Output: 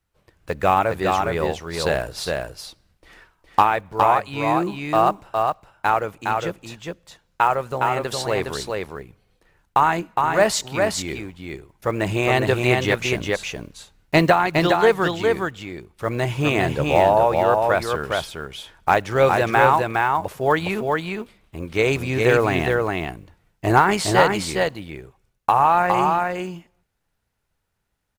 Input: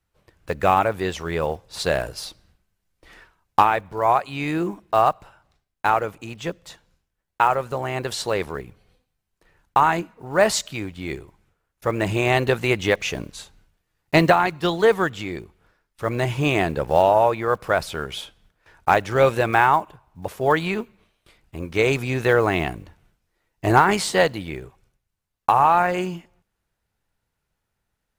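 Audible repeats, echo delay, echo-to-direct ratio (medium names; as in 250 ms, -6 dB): 1, 412 ms, -3.5 dB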